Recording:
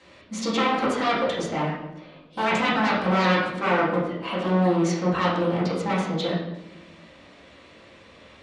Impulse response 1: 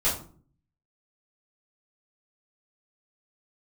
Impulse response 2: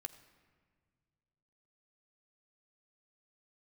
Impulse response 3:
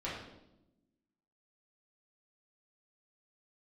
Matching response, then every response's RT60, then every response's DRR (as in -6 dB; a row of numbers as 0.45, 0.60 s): 3; 0.45, 1.8, 0.90 s; -10.5, 8.5, -8.5 dB